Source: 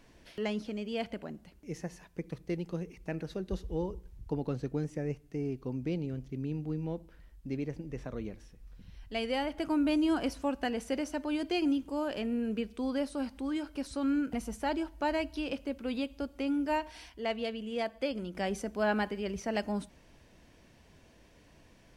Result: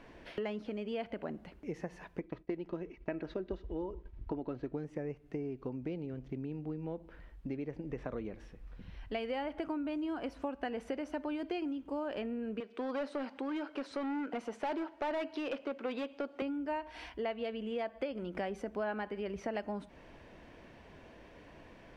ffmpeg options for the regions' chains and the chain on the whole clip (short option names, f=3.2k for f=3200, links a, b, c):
-filter_complex "[0:a]asettb=1/sr,asplit=3[a][b][c];[a]atrim=end=2.204[d];[b]atrim=start=2.2:end=4.73,asetpts=PTS-STARTPTS,afade=t=in:d=0.004:c=qsin,afade=t=out:st=2.526:d=0.004:c=qsin,agate=range=-33dB:threshold=-47dB:ratio=3:release=100:detection=peak,lowpass=4.7k,aecho=1:1:3.1:0.42,atrim=end_sample=111573[e];[c]atrim=start=4.726[f];[d][e]acrossfade=d=0.004:c1=hsin:c2=qsin[g];[g][f]acrossfade=d=0.004:c1=qsin:c2=hsin,asettb=1/sr,asplit=3[h][i][j];[h]atrim=end=12.604[k];[i]atrim=start=12.6:end=16.42,asetpts=PTS-STARTPTS,afade=t=in:d=0.004:c=qsin,afade=t=out:st=3.816:d=0.004:c=qsin,highpass=330,lowpass=7k,asoftclip=type=hard:threshold=-34.5dB[l];[j]atrim=start=16.416[m];[k][l]acrossfade=d=0.004:c1=hsin:c2=qsin[n];[n][m]acrossfade=d=0.004:c1=qsin:c2=hsin,highshelf=f=4.1k:g=-9,acompressor=threshold=-41dB:ratio=10,bass=f=250:g=-7,treble=f=4k:g=-10,volume=8.5dB"